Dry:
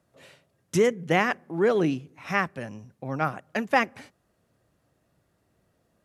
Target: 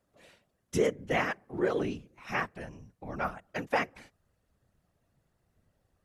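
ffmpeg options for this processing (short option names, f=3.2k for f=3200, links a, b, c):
-af "asubboost=boost=8:cutoff=67,afftfilt=real='hypot(re,im)*cos(2*PI*random(0))':imag='hypot(re,im)*sin(2*PI*random(1))':win_size=512:overlap=0.75"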